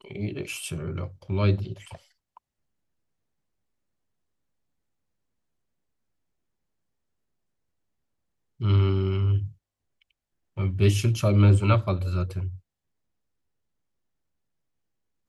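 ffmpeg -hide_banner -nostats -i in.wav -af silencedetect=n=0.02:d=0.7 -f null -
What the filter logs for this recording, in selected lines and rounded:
silence_start: 1.95
silence_end: 8.61 | silence_duration: 6.66
silence_start: 9.47
silence_end: 10.57 | silence_duration: 1.10
silence_start: 12.56
silence_end: 15.28 | silence_duration: 2.73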